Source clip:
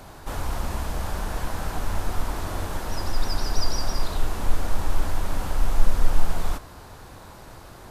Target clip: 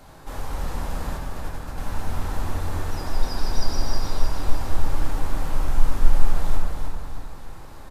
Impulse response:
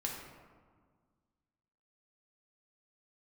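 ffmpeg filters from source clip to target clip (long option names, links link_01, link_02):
-filter_complex "[0:a]asettb=1/sr,asplit=3[link_01][link_02][link_03];[link_01]atrim=end=1.174[link_04];[link_02]atrim=start=1.17:end=1.78,asetpts=PTS-STARTPTS,afade=type=in:duration=0.004:curve=qsin,afade=type=out:start_time=0.606:duration=0.004:curve=qsin,agate=range=-33dB:threshold=-20dB:ratio=3:detection=peak[link_05];[link_03]atrim=start=1.776[link_06];[link_04][link_05]acrossfade=duration=0.004:curve1=hsin:curve2=qsin[link_07];[link_07][link_06]acrossfade=duration=0.004:curve1=qsin:curve2=hsin,aecho=1:1:309|618|927|1236|1545:0.562|0.236|0.0992|0.0417|0.0175[link_08];[1:a]atrim=start_sample=2205[link_09];[link_08][link_09]afir=irnorm=-1:irlink=0,volume=-4dB"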